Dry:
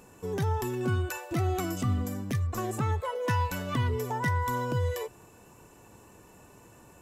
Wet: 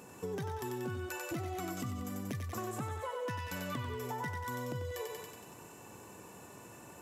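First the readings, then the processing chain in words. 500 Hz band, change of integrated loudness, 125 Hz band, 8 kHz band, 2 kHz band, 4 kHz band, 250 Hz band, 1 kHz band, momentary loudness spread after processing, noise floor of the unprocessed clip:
−7.0 dB, −9.0 dB, −12.0 dB, −4.0 dB, −7.0 dB, −5.5 dB, −7.5 dB, −8.5 dB, 13 LU, −55 dBFS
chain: high-pass filter 100 Hz
on a send: feedback echo with a high-pass in the loop 93 ms, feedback 60%, high-pass 530 Hz, level −4 dB
on the sum: downward compressor 6 to 1, threshold −38 dBFS, peak gain reduction 13.5 dB
level +1.5 dB

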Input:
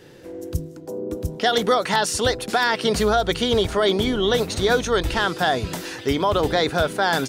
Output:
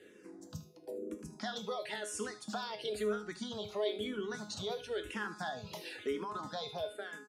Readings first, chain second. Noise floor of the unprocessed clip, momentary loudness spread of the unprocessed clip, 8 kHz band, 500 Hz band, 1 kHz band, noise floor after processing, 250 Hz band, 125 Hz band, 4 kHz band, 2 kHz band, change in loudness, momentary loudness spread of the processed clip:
−39 dBFS, 11 LU, −17.0 dB, −17.5 dB, −20.5 dB, −58 dBFS, −18.0 dB, −22.0 dB, −19.0 dB, −19.5 dB, −18.5 dB, 9 LU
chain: fade-out on the ending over 0.59 s
low-pass filter 11,000 Hz 12 dB per octave
reverb reduction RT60 0.67 s
high-pass filter 140 Hz 12 dB per octave
downward compressor 3 to 1, threshold −27 dBFS, peak gain reduction 10 dB
tuned comb filter 210 Hz, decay 0.49 s, harmonics all, mix 80%
single-tap delay 77 ms −16 dB
frequency shifter mixed with the dry sound −1 Hz
level +3 dB

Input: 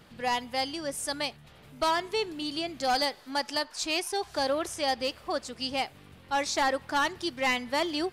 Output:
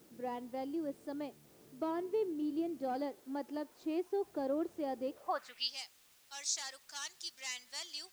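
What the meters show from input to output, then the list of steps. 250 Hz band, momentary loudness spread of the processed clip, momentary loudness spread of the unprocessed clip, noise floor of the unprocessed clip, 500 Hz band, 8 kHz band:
−3.5 dB, 7 LU, 6 LU, −54 dBFS, −7.0 dB, −5.5 dB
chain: band-pass filter sweep 340 Hz → 6,700 Hz, 0:05.09–0:05.78
background noise white −68 dBFS
level +1 dB

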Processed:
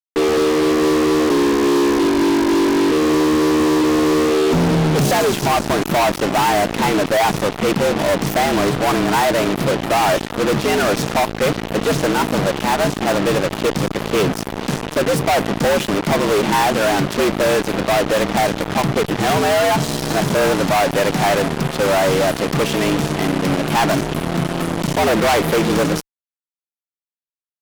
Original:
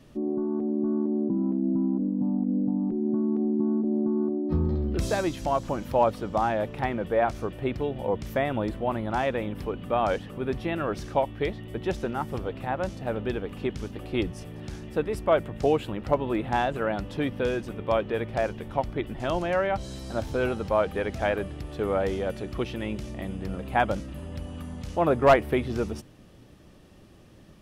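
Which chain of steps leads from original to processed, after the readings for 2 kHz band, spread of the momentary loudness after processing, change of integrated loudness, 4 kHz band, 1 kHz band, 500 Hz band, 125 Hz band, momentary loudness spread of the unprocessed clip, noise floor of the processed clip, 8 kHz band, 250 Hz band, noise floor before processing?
+13.5 dB, 4 LU, +11.0 dB, +19.0 dB, +11.5 dB, +10.0 dB, +10.0 dB, 8 LU, below −85 dBFS, can't be measured, +10.0 dB, −51 dBFS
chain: frequency shifter +89 Hz
fuzz pedal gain 42 dB, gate −36 dBFS

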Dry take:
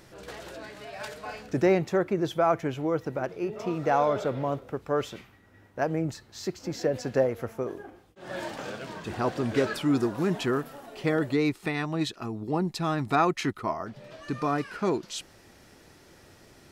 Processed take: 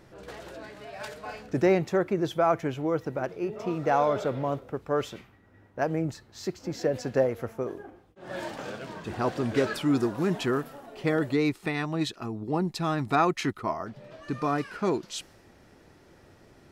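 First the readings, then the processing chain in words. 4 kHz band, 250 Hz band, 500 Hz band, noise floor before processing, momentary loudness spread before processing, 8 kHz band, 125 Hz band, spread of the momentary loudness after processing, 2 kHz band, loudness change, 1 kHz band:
−0.5 dB, 0.0 dB, 0.0 dB, −56 dBFS, 16 LU, −1.0 dB, 0.0 dB, 16 LU, 0.0 dB, 0.0 dB, 0.0 dB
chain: one half of a high-frequency compander decoder only

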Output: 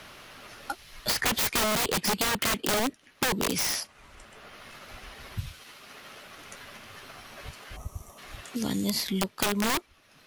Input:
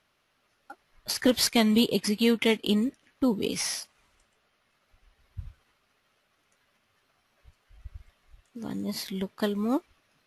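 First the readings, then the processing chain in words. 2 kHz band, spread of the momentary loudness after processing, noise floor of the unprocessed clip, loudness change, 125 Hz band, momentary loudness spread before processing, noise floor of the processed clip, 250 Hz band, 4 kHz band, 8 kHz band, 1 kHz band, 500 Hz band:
+5.0 dB, 21 LU, −72 dBFS, −1.0 dB, +1.0 dB, 15 LU, −60 dBFS, −6.0 dB, +1.0 dB, +4.5 dB, +7.5 dB, −4.0 dB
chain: wrap-around overflow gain 22.5 dB
gain on a spectral selection 0:07.76–0:08.18, 1,300–5,500 Hz −17 dB
multiband upward and downward compressor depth 70%
level +3 dB

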